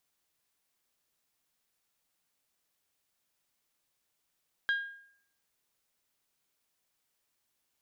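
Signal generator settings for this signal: glass hit bell, lowest mode 1.62 kHz, decay 0.64 s, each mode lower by 10.5 dB, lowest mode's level -24 dB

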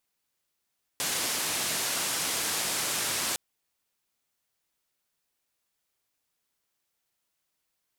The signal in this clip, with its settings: noise band 120–11000 Hz, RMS -30 dBFS 2.36 s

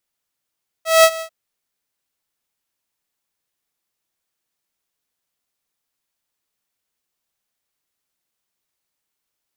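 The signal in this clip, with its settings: ADSR saw 649 Hz, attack 187 ms, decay 61 ms, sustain -19 dB, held 0.36 s, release 83 ms -3.5 dBFS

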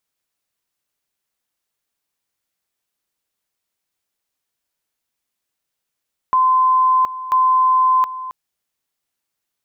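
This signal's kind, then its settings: two-level tone 1.03 kHz -11 dBFS, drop 14.5 dB, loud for 0.72 s, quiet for 0.27 s, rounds 2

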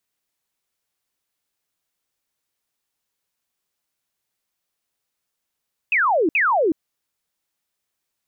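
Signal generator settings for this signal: burst of laser zaps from 2.7 kHz, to 290 Hz, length 0.37 s sine, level -15 dB, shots 2, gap 0.06 s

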